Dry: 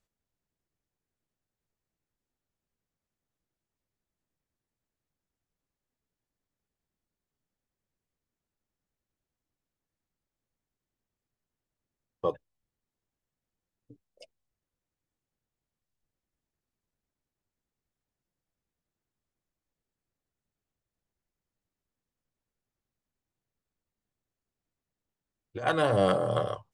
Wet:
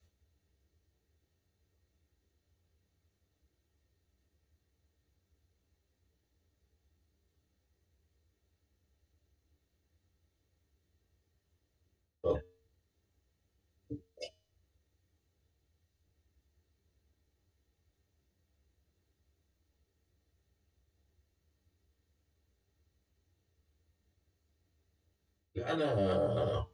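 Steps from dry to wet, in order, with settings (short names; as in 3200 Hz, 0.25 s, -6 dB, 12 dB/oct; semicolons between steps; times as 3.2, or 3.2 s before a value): high shelf 7700 Hz +4 dB; reverse; compressor 4:1, threshold -41 dBFS, peak gain reduction 18 dB; reverse; resonator 90 Hz, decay 0.55 s, harmonics odd, mix 40%; reverb, pre-delay 3 ms, DRR -5 dB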